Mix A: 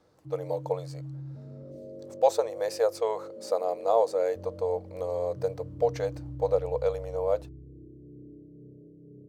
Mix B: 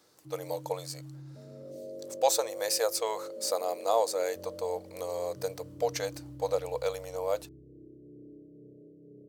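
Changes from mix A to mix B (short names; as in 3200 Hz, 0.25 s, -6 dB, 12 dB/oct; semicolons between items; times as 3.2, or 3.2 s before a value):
background +6.0 dB; master: add tilt +4.5 dB/oct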